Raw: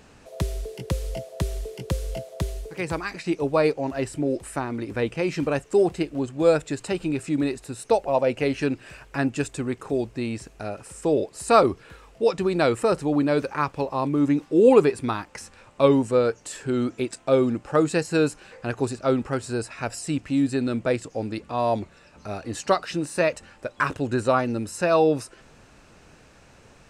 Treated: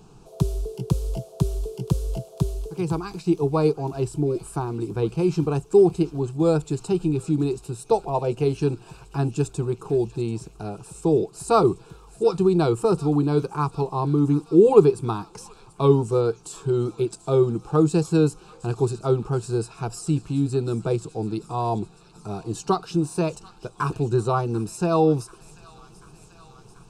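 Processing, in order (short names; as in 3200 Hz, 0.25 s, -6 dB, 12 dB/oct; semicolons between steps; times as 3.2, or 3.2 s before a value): low shelf 420 Hz +10.5 dB; fixed phaser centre 380 Hz, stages 8; on a send: thin delay 0.738 s, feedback 71%, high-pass 1700 Hz, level -15.5 dB; on the sum: gain -1 dB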